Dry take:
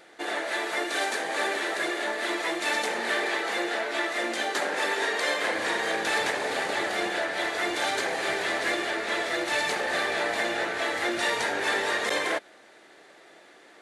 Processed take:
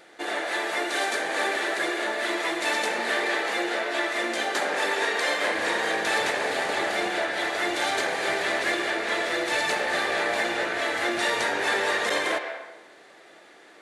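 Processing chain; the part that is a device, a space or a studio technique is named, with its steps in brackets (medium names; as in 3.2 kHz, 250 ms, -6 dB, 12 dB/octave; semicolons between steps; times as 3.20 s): filtered reverb send (on a send: high-pass 430 Hz + low-pass 3.7 kHz + reverberation RT60 1.0 s, pre-delay 105 ms, DRR 6 dB); on the sum: trim +1 dB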